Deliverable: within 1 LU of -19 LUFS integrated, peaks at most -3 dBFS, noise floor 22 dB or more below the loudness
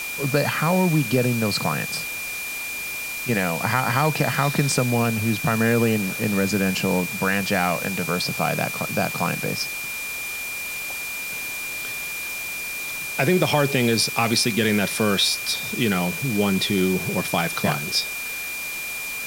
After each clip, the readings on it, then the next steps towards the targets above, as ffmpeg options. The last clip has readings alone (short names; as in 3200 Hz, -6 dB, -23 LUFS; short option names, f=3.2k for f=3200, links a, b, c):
steady tone 2400 Hz; tone level -29 dBFS; noise floor -30 dBFS; noise floor target -45 dBFS; loudness -22.5 LUFS; peak -3.5 dBFS; loudness target -19.0 LUFS
-> -af "bandreject=f=2.4k:w=30"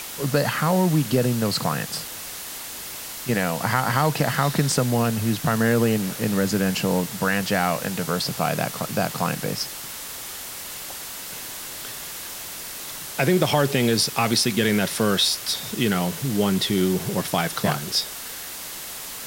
steady tone none; noise floor -35 dBFS; noise floor target -46 dBFS
-> -af "afftdn=nr=11:nf=-35"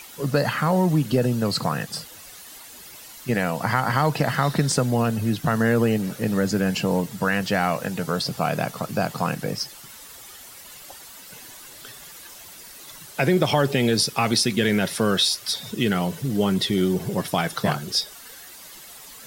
noise floor -43 dBFS; noise floor target -45 dBFS
-> -af "afftdn=nr=6:nf=-43"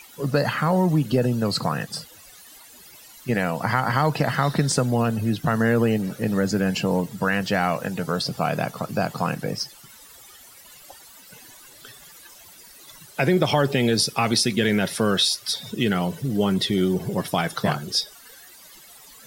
noise floor -48 dBFS; loudness -23.0 LUFS; peak -4.5 dBFS; loudness target -19.0 LUFS
-> -af "volume=4dB,alimiter=limit=-3dB:level=0:latency=1"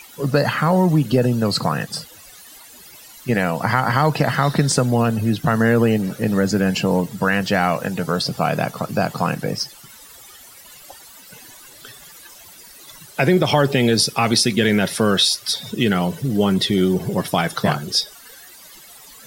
loudness -19.0 LUFS; peak -3.0 dBFS; noise floor -44 dBFS